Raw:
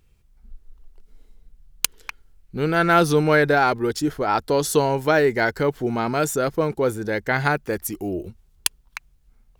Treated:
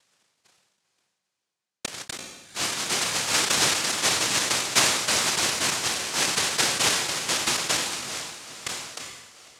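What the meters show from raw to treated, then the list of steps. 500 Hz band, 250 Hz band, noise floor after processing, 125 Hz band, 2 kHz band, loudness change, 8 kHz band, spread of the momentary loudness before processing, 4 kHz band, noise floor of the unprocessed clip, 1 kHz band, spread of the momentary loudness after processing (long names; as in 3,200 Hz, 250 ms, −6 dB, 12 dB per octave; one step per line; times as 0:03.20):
−14.5 dB, −13.0 dB, −83 dBFS, −14.0 dB, −2.5 dB, −1.5 dB, +8.5 dB, 14 LU, +10.0 dB, −59 dBFS, −7.0 dB, 16 LU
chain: high-pass filter 140 Hz 12 dB per octave
noise gate −43 dBFS, range −23 dB
harmonic and percussive parts rebalanced harmonic −13 dB
leveller curve on the samples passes 2
reversed playback
upward compression, threshold −25 dBFS
reversed playback
cochlear-implant simulation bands 1
on a send: feedback delay with all-pass diffusion 462 ms, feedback 42%, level −9 dB
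on the sum: level that may fall only so fast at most 48 dB per second
level −8.5 dB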